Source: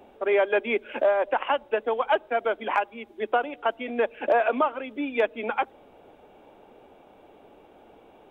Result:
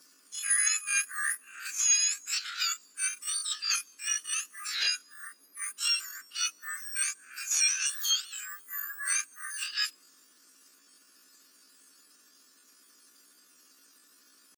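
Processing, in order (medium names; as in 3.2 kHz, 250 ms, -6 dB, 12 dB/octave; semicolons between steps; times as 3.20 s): spectrum inverted on a logarithmic axis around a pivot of 2 kHz; tempo 0.57×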